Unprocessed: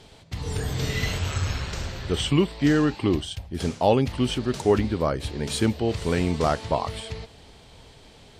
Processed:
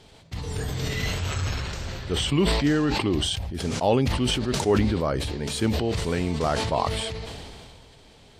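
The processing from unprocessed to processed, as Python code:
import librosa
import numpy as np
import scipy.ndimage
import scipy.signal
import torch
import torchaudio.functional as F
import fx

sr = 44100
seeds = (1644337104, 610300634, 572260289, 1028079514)

y = fx.sustainer(x, sr, db_per_s=25.0)
y = F.gain(torch.from_numpy(y), -2.5).numpy()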